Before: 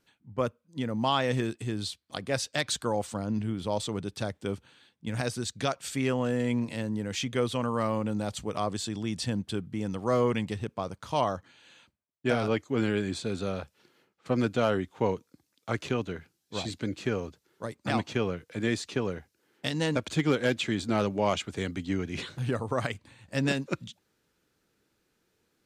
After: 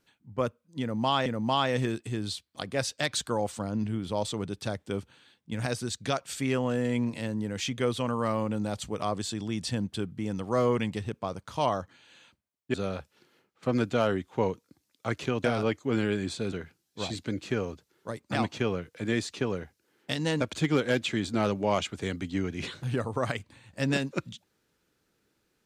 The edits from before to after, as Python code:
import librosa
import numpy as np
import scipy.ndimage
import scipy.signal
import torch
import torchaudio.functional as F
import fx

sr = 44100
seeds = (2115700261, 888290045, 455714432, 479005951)

y = fx.edit(x, sr, fx.repeat(start_s=0.81, length_s=0.45, count=2),
    fx.move(start_s=12.29, length_s=1.08, to_s=16.07), tone=tone)